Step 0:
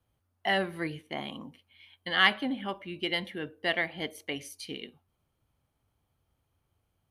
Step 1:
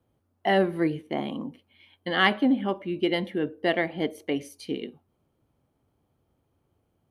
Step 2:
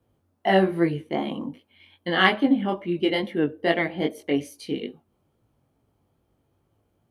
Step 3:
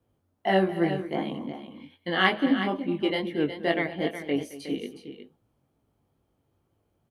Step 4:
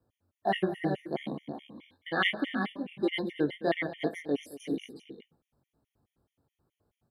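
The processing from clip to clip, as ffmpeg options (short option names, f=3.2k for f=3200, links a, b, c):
-af "equalizer=f=320:w=0.41:g=13.5,volume=-2.5dB"
-af "flanger=delay=17.5:depth=4.1:speed=2.4,volume=5.5dB"
-af "aecho=1:1:219|365:0.158|0.316,volume=-3.5dB"
-af "afftfilt=real='re*gt(sin(2*PI*4.7*pts/sr)*(1-2*mod(floor(b*sr/1024/1800),2)),0)':imag='im*gt(sin(2*PI*4.7*pts/sr)*(1-2*mod(floor(b*sr/1024/1800),2)),0)':win_size=1024:overlap=0.75,volume=-1.5dB"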